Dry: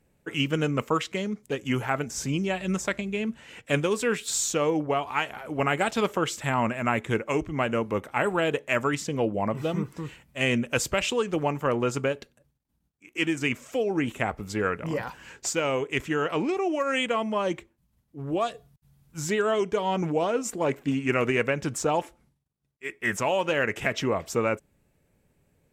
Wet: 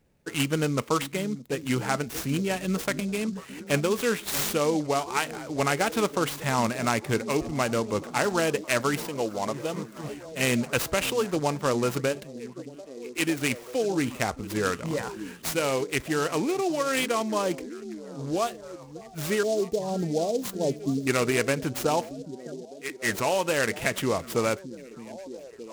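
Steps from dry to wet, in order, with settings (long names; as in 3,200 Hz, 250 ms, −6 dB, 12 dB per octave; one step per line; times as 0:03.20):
0:09.03–0:10.04: low-shelf EQ 260 Hz −11 dB
0:19.43–0:21.07: elliptic band-stop filter 700–5,900 Hz
echo through a band-pass that steps 617 ms, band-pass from 200 Hz, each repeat 0.7 octaves, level −9.5 dB
short delay modulated by noise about 5,200 Hz, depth 0.039 ms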